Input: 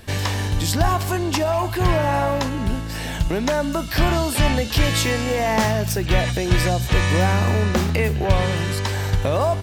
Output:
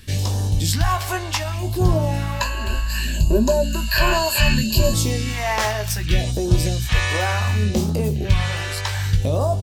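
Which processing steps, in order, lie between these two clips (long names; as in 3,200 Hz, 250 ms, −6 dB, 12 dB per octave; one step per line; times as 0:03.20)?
0:02.40–0:04.94: EQ curve with evenly spaced ripples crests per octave 1.4, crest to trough 17 dB
all-pass phaser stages 2, 0.66 Hz, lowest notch 180–2,000 Hz
double-tracking delay 19 ms −8 dB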